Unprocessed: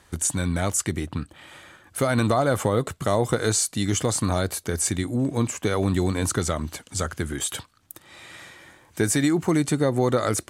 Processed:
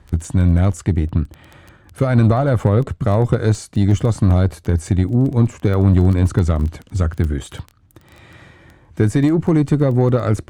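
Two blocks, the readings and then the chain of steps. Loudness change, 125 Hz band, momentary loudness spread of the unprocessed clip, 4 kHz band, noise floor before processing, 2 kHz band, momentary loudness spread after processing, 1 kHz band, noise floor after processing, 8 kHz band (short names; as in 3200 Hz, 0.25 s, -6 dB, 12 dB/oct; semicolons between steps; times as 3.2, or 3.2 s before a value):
+7.0 dB, +12.0 dB, 15 LU, -6.0 dB, -57 dBFS, -1.0 dB, 8 LU, +1.0 dB, -51 dBFS, -11.5 dB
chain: RIAA curve playback; crackle 11/s -25 dBFS; added harmonics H 6 -25 dB, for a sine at -2.5 dBFS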